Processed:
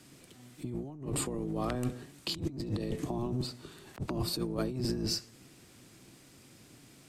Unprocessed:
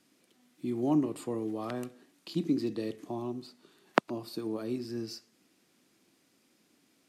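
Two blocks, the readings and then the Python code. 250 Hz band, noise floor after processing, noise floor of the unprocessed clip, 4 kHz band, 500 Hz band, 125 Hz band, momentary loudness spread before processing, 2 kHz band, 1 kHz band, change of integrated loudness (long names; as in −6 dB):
−3.5 dB, −58 dBFS, −70 dBFS, +7.5 dB, −2.5 dB, +6.0 dB, 14 LU, −6.5 dB, −5.0 dB, −1.5 dB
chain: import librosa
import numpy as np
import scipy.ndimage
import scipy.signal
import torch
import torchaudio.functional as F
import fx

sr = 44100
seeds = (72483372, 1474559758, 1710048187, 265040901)

y = fx.octave_divider(x, sr, octaves=1, level_db=1.0)
y = fx.peak_eq(y, sr, hz=8000.0, db=5.0, octaves=0.28)
y = fx.over_compress(y, sr, threshold_db=-39.0, ratio=-1.0)
y = y * librosa.db_to_amplitude(3.5)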